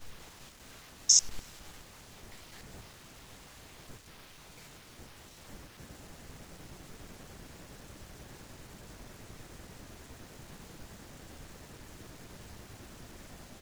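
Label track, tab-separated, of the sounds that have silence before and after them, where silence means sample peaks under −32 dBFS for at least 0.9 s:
1.090000	1.390000	sound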